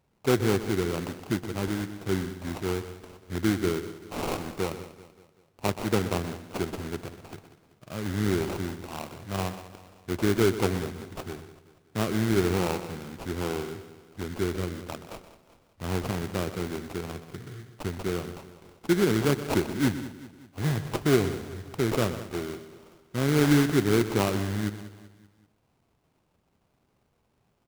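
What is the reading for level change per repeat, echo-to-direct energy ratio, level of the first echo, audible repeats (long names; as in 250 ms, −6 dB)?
repeats not evenly spaced, −10.0 dB, −13.0 dB, 8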